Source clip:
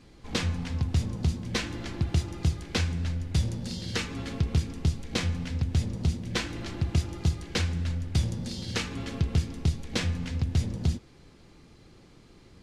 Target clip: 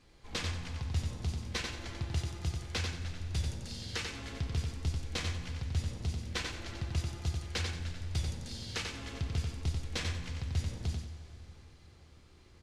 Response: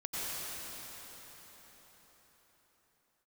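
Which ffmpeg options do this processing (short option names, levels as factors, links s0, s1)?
-filter_complex "[0:a]equalizer=f=210:w=0.67:g=-8,aecho=1:1:91|182|273|364:0.596|0.167|0.0467|0.0131,asplit=2[s0][s1];[1:a]atrim=start_sample=2205[s2];[s1][s2]afir=irnorm=-1:irlink=0,volume=0.133[s3];[s0][s3]amix=inputs=2:normalize=0,volume=0.473"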